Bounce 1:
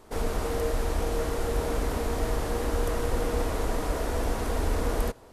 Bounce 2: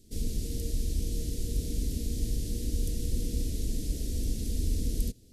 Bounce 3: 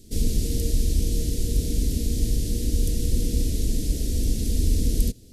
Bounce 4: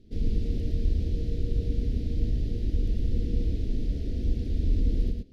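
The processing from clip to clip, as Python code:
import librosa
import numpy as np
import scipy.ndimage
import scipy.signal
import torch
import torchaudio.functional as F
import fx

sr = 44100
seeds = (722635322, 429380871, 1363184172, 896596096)

y1 = scipy.signal.sosfilt(scipy.signal.cheby1(2, 1.0, [220.0, 4700.0], 'bandstop', fs=sr, output='sos'), x)
y2 = fx.rider(y1, sr, range_db=10, speed_s=2.0)
y2 = y2 * librosa.db_to_amplitude(7.5)
y3 = fx.air_absorb(y2, sr, metres=320.0)
y3 = y3 + 10.0 ** (-4.5 / 20.0) * np.pad(y3, (int(113 * sr / 1000.0), 0))[:len(y3)]
y3 = y3 * librosa.db_to_amplitude(-5.0)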